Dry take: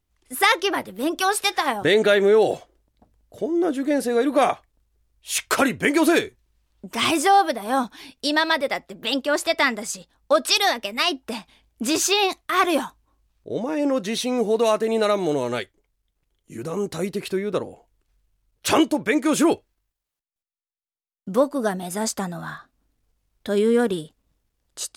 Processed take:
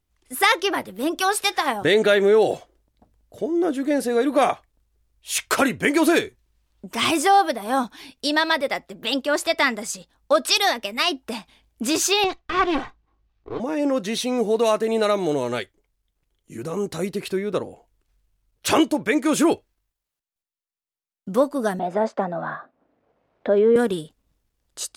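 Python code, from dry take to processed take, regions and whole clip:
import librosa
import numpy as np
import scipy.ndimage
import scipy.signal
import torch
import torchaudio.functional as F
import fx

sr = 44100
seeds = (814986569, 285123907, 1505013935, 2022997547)

y = fx.chain(x, sr, fx.lower_of_two(delay_ms=2.6),
    fx.air_absorb(metres=160.0), at=(12.24, 13.6))
y = fx.chain(y, sr, fx.bandpass_edges(low_hz=190.0, high_hz=2000.0),
    fx.peak_eq(hz=600.0, db=10.0, octaves=0.96),
    fx.band_squash(depth_pct=40), at=(21.79, 23.76))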